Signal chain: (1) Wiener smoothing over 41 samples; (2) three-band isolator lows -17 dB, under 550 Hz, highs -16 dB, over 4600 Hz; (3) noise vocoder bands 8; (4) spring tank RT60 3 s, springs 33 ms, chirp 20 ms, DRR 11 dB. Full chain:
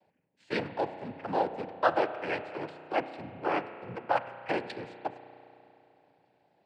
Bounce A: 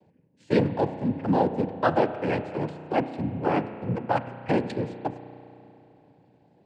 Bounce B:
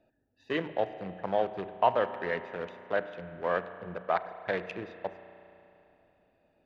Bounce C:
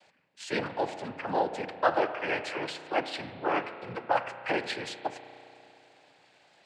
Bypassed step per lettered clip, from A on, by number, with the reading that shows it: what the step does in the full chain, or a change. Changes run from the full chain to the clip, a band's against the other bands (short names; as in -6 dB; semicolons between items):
2, 125 Hz band +13.5 dB; 3, 500 Hz band +2.5 dB; 1, 4 kHz band +5.5 dB